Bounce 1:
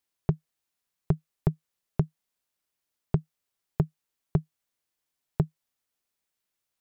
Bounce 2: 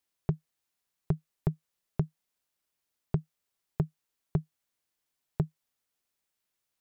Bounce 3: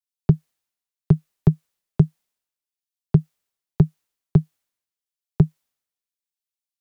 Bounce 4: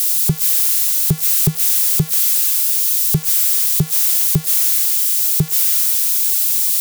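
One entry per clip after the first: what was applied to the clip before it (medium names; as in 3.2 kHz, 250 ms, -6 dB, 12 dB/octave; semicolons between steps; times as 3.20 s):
peak limiter -15 dBFS, peak gain reduction 4.5 dB
three bands expanded up and down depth 100%; trim +8 dB
zero-crossing glitches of -9.5 dBFS; trim -1.5 dB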